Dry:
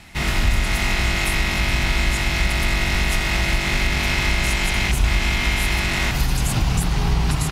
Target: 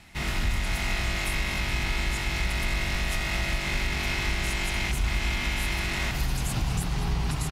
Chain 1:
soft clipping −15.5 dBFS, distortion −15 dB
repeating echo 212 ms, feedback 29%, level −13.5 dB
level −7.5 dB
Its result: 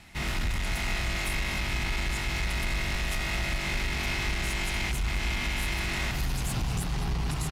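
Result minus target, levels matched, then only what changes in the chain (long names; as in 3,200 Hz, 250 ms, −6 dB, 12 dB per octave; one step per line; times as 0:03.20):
soft clipping: distortion +14 dB
change: soft clipping −6 dBFS, distortion −29 dB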